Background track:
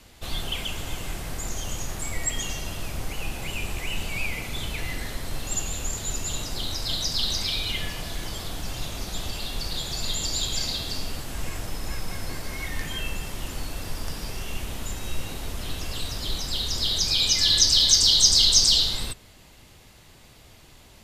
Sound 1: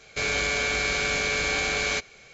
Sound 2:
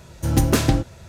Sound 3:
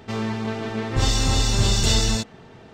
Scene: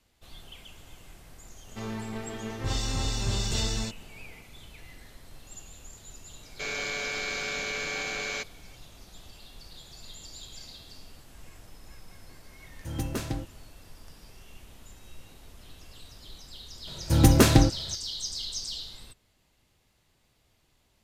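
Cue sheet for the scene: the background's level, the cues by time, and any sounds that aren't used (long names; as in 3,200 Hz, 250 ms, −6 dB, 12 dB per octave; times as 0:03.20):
background track −17.5 dB
0:01.68: mix in 3 −9.5 dB
0:06.43: mix in 1 −7 dB + high-pass filter 140 Hz 24 dB per octave
0:12.62: mix in 2 −14.5 dB
0:16.87: mix in 2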